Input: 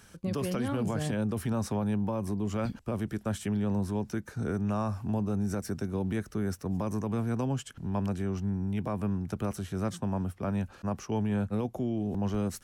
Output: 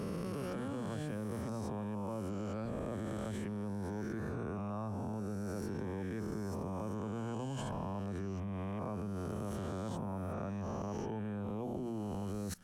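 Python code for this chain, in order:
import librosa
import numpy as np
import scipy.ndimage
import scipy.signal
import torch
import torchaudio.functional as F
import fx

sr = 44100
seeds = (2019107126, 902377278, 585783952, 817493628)

y = fx.spec_swells(x, sr, rise_s=2.45)
y = fx.high_shelf(y, sr, hz=2300.0, db=-9.0)
y = fx.hum_notches(y, sr, base_hz=60, count=4)
y = fx.level_steps(y, sr, step_db=22)
y = y * 10.0 ** (5.0 / 20.0)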